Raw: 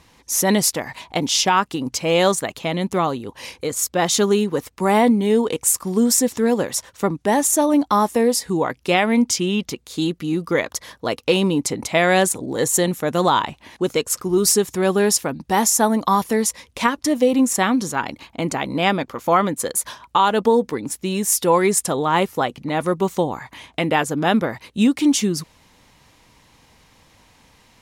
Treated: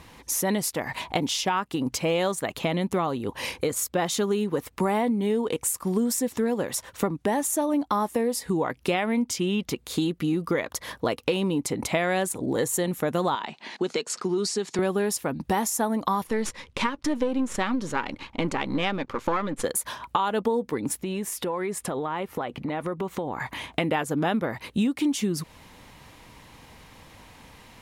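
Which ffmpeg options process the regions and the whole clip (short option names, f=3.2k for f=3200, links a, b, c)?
-filter_complex "[0:a]asettb=1/sr,asplit=3[a][b][c];[a]atrim=end=13.354[d];[b]atrim=start=13.35:end=14.79,asetpts=PTS-STARTPTS,afade=t=in:d=0.004:c=qsin,afade=t=out:st=1.436:d=0.004:c=qsin,acompressor=threshold=-21dB:ratio=2:attack=3.2:release=140:knee=1:detection=peak,highpass=f=200:w=0.5412,highpass=f=200:w=1.3066,equalizer=f=290:t=q:w=4:g=-8,equalizer=f=540:t=q:w=4:g=-6,equalizer=f=1.1k:t=q:w=4:g=-4,equalizer=f=4.4k:t=q:w=4:g=7,lowpass=f=7.6k:w=0.5412,lowpass=f=7.6k:w=1.3066[e];[c]atrim=start=14.786[f];[d][e]acrossfade=d=0.004:c1=hsin:c2=qsin[g];[g][f]acrossfade=d=0.004:c1=qsin:c2=hsin,asettb=1/sr,asplit=3[h][i][j];[h]atrim=end=16.274[k];[i]atrim=start=16.27:end=19.64,asetpts=PTS-STARTPTS,afade=t=in:d=0.004:c=qsin,afade=t=out:st=3.366:d=0.004:c=qsin,aeval=exprs='if(lt(val(0),0),0.447*val(0),val(0))':c=same,lowpass=6.4k,bandreject=f=690:w=6.1[l];[j]atrim=start=19.636[m];[k][l]acrossfade=d=0.004:c1=hsin:c2=qsin[n];[n][m]acrossfade=d=0.004:c1=qsin:c2=hsin,asettb=1/sr,asplit=3[o][p][q];[o]atrim=end=21.034[r];[p]atrim=start=21.03:end=23.4,asetpts=PTS-STARTPTS,afade=t=in:d=0.004:c=qsin,afade=t=out:st=2.366:d=0.004:c=qsin,bass=f=250:g=-3,treble=f=4k:g=-9,acompressor=threshold=-31dB:ratio=6:attack=3.2:release=140:knee=1:detection=peak[s];[q]atrim=start=23.396[t];[r][s]acrossfade=d=0.004:c1=hsin:c2=qsin[u];[u][t]acrossfade=d=0.004:c1=qsin:c2=hsin,acompressor=threshold=-28dB:ratio=5,equalizer=f=5.9k:t=o:w=1.2:g=-5.5,volume=5dB"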